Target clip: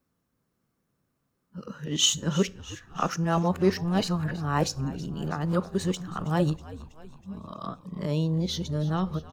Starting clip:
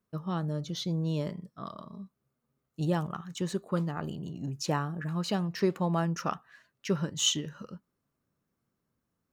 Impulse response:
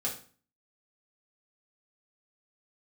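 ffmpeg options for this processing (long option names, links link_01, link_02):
-filter_complex "[0:a]areverse,asplit=7[link_01][link_02][link_03][link_04][link_05][link_06][link_07];[link_02]adelay=323,afreqshift=-81,volume=-17.5dB[link_08];[link_03]adelay=646,afreqshift=-162,volume=-21.7dB[link_09];[link_04]adelay=969,afreqshift=-243,volume=-25.8dB[link_10];[link_05]adelay=1292,afreqshift=-324,volume=-30dB[link_11];[link_06]adelay=1615,afreqshift=-405,volume=-34.1dB[link_12];[link_07]adelay=1938,afreqshift=-486,volume=-38.3dB[link_13];[link_01][link_08][link_09][link_10][link_11][link_12][link_13]amix=inputs=7:normalize=0,asplit=2[link_14][link_15];[1:a]atrim=start_sample=2205[link_16];[link_15][link_16]afir=irnorm=-1:irlink=0,volume=-18dB[link_17];[link_14][link_17]amix=inputs=2:normalize=0,volume=3.5dB"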